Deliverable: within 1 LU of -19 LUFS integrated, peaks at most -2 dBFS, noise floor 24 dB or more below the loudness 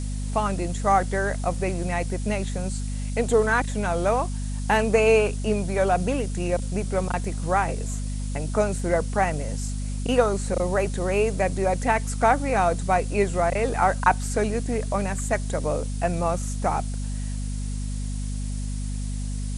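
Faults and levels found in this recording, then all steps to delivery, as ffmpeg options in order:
hum 50 Hz; harmonics up to 250 Hz; hum level -26 dBFS; noise floor -29 dBFS; noise floor target -49 dBFS; loudness -25.0 LUFS; peak -4.5 dBFS; loudness target -19.0 LUFS
-> -af "bandreject=f=50:t=h:w=4,bandreject=f=100:t=h:w=4,bandreject=f=150:t=h:w=4,bandreject=f=200:t=h:w=4,bandreject=f=250:t=h:w=4"
-af "afftdn=nr=20:nf=-29"
-af "volume=6dB,alimiter=limit=-2dB:level=0:latency=1"

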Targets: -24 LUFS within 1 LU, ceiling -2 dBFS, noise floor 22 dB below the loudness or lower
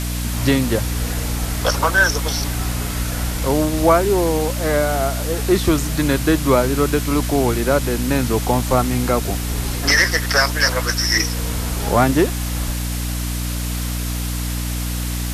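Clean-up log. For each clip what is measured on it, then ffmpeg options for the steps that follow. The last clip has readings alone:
hum 60 Hz; harmonics up to 300 Hz; hum level -21 dBFS; noise floor -24 dBFS; noise floor target -41 dBFS; loudness -19.0 LUFS; peak -2.5 dBFS; loudness target -24.0 LUFS
-> -af "bandreject=f=60:t=h:w=4,bandreject=f=120:t=h:w=4,bandreject=f=180:t=h:w=4,bandreject=f=240:t=h:w=4,bandreject=f=300:t=h:w=4"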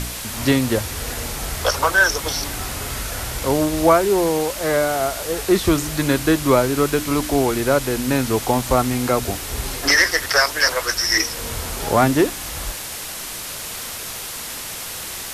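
hum none; noise floor -31 dBFS; noise floor target -42 dBFS
-> -af "afftdn=nr=11:nf=-31"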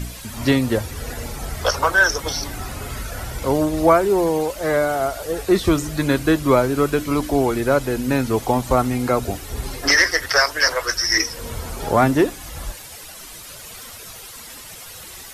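noise floor -38 dBFS; noise floor target -42 dBFS
-> -af "afftdn=nr=6:nf=-38"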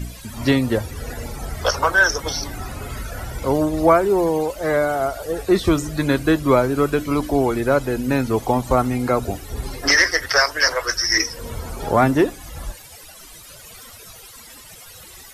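noise floor -42 dBFS; loudness -19.5 LUFS; peak -3.5 dBFS; loudness target -24.0 LUFS
-> -af "volume=-4.5dB"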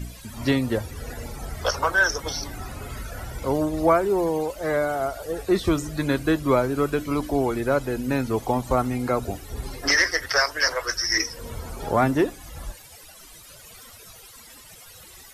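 loudness -24.0 LUFS; peak -8.0 dBFS; noise floor -47 dBFS

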